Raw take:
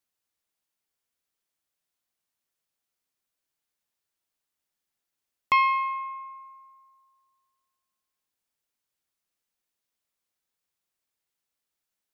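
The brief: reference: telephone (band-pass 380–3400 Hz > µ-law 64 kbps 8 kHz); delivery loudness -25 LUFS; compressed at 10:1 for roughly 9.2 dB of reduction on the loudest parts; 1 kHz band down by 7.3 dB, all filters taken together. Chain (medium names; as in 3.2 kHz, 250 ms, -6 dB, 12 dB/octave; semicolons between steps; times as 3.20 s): peaking EQ 1 kHz -7.5 dB; compression 10:1, threshold -30 dBFS; band-pass 380–3400 Hz; trim +11.5 dB; µ-law 64 kbps 8 kHz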